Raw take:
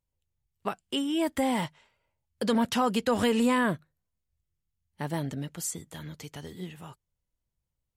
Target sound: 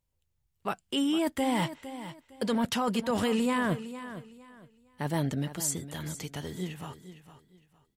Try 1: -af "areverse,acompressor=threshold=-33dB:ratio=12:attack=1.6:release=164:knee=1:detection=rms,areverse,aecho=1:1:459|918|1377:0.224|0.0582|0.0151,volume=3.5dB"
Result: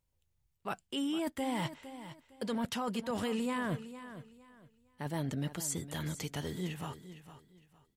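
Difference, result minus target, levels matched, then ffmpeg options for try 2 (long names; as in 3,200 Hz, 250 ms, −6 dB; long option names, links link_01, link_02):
downward compressor: peak gain reduction +7 dB
-af "areverse,acompressor=threshold=-25.5dB:ratio=12:attack=1.6:release=164:knee=1:detection=rms,areverse,aecho=1:1:459|918|1377:0.224|0.0582|0.0151,volume=3.5dB"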